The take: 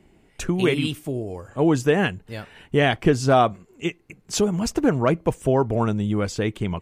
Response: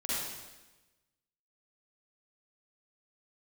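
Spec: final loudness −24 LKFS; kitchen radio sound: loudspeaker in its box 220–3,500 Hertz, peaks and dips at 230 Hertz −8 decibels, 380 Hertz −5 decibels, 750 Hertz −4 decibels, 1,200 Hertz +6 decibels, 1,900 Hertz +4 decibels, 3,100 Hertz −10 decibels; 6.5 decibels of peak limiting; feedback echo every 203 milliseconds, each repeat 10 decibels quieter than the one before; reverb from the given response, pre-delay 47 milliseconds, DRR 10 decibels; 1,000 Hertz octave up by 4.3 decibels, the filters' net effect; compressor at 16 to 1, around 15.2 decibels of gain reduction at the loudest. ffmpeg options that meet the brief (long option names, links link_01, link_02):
-filter_complex "[0:a]equalizer=frequency=1000:width_type=o:gain=5.5,acompressor=threshold=-25dB:ratio=16,alimiter=limit=-20.5dB:level=0:latency=1,aecho=1:1:203|406|609|812:0.316|0.101|0.0324|0.0104,asplit=2[link_01][link_02];[1:a]atrim=start_sample=2205,adelay=47[link_03];[link_02][link_03]afir=irnorm=-1:irlink=0,volume=-15.5dB[link_04];[link_01][link_04]amix=inputs=2:normalize=0,highpass=220,equalizer=frequency=230:width_type=q:width=4:gain=-8,equalizer=frequency=380:width_type=q:width=4:gain=-5,equalizer=frequency=750:width_type=q:width=4:gain=-4,equalizer=frequency=1200:width_type=q:width=4:gain=6,equalizer=frequency=1900:width_type=q:width=4:gain=4,equalizer=frequency=3100:width_type=q:width=4:gain=-10,lowpass=frequency=3500:width=0.5412,lowpass=frequency=3500:width=1.3066,volume=11.5dB"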